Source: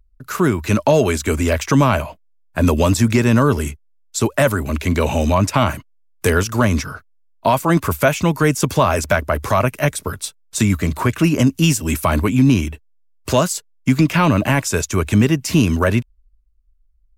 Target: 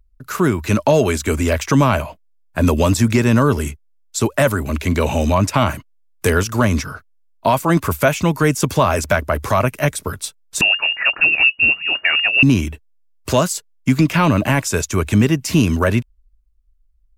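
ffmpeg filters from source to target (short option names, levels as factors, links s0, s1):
-filter_complex "[0:a]asettb=1/sr,asplit=3[s0][s1][s2];[s0]atrim=end=10.614[s3];[s1]atrim=start=10.61:end=12.43,asetpts=PTS-STARTPTS,afade=t=in:d=0.004:c=qsin,afade=t=out:st=1.816:d=0.004:c=qsin,lowpass=f=2500:t=q:w=0.5098,lowpass=f=2500:t=q:w=0.6013,lowpass=f=2500:t=q:w=0.9,lowpass=f=2500:t=q:w=2.563,afreqshift=-2900[s4];[s2]atrim=start=12.426[s5];[s3][s4]acrossfade=d=0.004:c1=hsin:c2=qsin[s6];[s6][s5]acrossfade=d=0.004:c1=qsin:c2=hsin"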